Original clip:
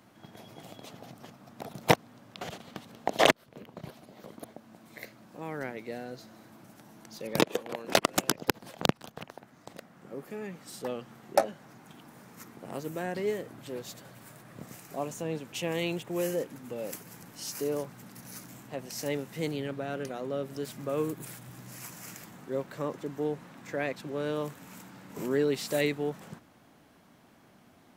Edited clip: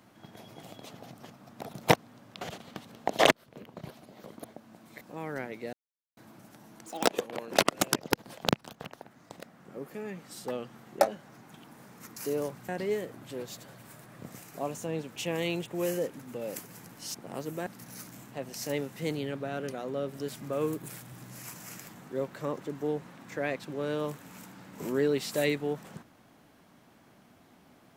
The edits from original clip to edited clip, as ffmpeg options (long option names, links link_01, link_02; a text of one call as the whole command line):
ffmpeg -i in.wav -filter_complex "[0:a]asplit=10[link_01][link_02][link_03][link_04][link_05][link_06][link_07][link_08][link_09][link_10];[link_01]atrim=end=5.012[link_11];[link_02]atrim=start=5.258:end=5.98,asetpts=PTS-STARTPTS,afade=type=out:start_time=0.718:duration=0.004:curve=hsin[link_12];[link_03]atrim=start=5.98:end=6.42,asetpts=PTS-STARTPTS,volume=0[link_13];[link_04]atrim=start=6.42:end=7.114,asetpts=PTS-STARTPTS,afade=type=in:duration=0.004:curve=hsin[link_14];[link_05]atrim=start=7.11:end=7.47,asetpts=PTS-STARTPTS,asetrate=64827,aresample=44100[link_15];[link_06]atrim=start=7.466:end=12.532[link_16];[link_07]atrim=start=17.508:end=18.032[link_17];[link_08]atrim=start=13.048:end=17.512[link_18];[link_09]atrim=start=12.528:end=13.052[link_19];[link_10]atrim=start=18.028[link_20];[link_12][link_13][link_14]concat=n=3:v=0:a=1[link_21];[link_11][link_21]acrossfade=duration=0.004:curve1=hsin:curve2=hsin[link_22];[link_22][link_15]acrossfade=duration=0.004:curve1=hsin:curve2=hsin[link_23];[link_23][link_16]acrossfade=duration=0.004:curve1=hsin:curve2=hsin[link_24];[link_24][link_17]acrossfade=duration=0.004:curve1=hsin:curve2=hsin[link_25];[link_25][link_18]acrossfade=duration=0.004:curve1=hsin:curve2=hsin[link_26];[link_26][link_19]acrossfade=duration=0.004:curve1=hsin:curve2=hsin[link_27];[link_27][link_20]acrossfade=duration=0.004:curve1=hsin:curve2=hsin" out.wav